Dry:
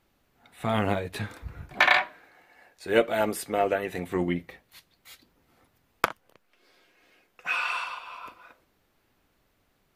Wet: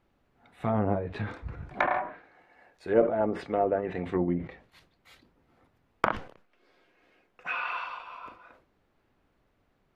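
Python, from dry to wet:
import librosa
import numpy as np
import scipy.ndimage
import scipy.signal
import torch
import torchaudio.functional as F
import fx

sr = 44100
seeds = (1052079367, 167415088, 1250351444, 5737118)

y = fx.lowpass(x, sr, hz=1600.0, slope=6)
y = fx.env_lowpass_down(y, sr, base_hz=1000.0, full_db=-23.0)
y = fx.sustainer(y, sr, db_per_s=120.0)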